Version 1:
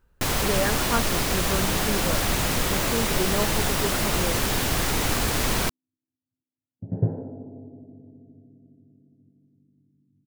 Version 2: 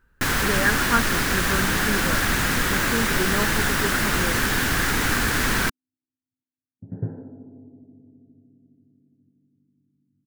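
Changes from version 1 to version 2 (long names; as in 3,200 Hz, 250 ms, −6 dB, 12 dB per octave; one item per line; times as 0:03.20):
second sound −6.0 dB
master: add graphic EQ with 15 bands 250 Hz +4 dB, 630 Hz −5 dB, 1,600 Hz +11 dB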